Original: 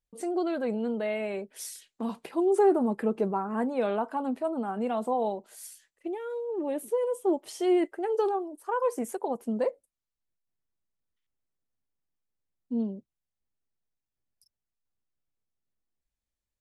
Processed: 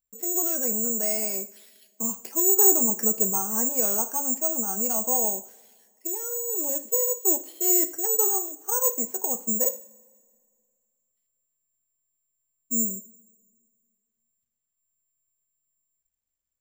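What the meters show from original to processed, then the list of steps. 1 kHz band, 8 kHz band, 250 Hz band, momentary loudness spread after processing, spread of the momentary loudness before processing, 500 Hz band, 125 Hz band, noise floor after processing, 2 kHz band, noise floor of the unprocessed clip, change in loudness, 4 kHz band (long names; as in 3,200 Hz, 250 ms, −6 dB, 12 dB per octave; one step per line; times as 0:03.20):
−3.5 dB, +25.0 dB, −3.5 dB, 10 LU, 11 LU, −4.0 dB, can't be measured, −83 dBFS, −4.0 dB, below −85 dBFS, +7.5 dB, +0.5 dB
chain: bad sample-rate conversion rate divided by 6×, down filtered, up zero stuff
coupled-rooms reverb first 0.44 s, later 2.1 s, from −20 dB, DRR 9 dB
level −4.5 dB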